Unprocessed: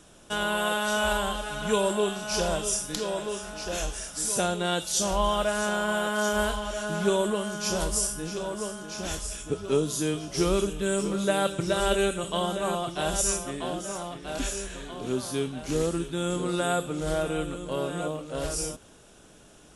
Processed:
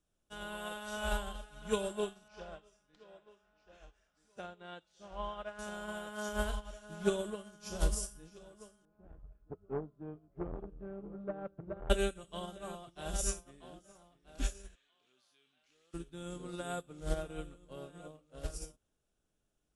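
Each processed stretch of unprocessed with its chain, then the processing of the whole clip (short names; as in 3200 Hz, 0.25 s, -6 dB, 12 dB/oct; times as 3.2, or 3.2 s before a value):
2.28–5.59 LPF 2000 Hz + tilt +2.5 dB/oct + careless resampling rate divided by 2×, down none, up filtered
8.85–11.9 Bessel low-pass 940 Hz, order 4 + core saturation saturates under 510 Hz
14.75–15.94 band-pass 2800 Hz, Q 1.2 + fast leveller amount 50%
whole clip: low shelf 85 Hz +12 dB; notch 970 Hz, Q 19; upward expander 2.5:1, over -37 dBFS; gain -3.5 dB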